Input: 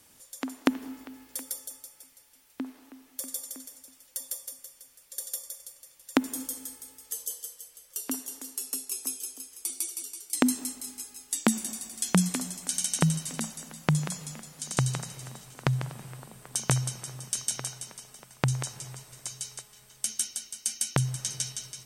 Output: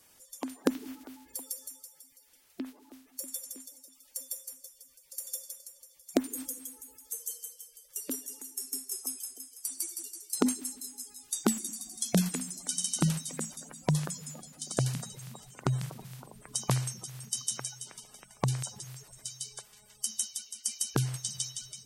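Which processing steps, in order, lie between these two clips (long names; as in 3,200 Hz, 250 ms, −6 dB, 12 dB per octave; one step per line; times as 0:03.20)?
spectral magnitudes quantised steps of 30 dB
level −2 dB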